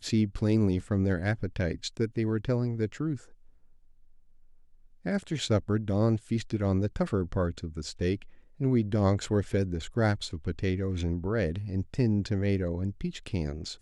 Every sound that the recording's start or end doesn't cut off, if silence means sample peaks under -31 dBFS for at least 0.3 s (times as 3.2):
5.06–8.22